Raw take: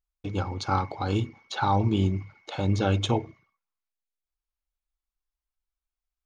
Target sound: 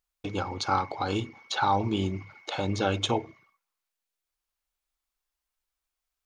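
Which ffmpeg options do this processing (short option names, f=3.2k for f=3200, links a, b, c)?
-filter_complex "[0:a]lowshelf=f=220:g=-11.5,asplit=2[a][b];[b]acompressor=threshold=-42dB:ratio=6,volume=2.5dB[c];[a][c]amix=inputs=2:normalize=0"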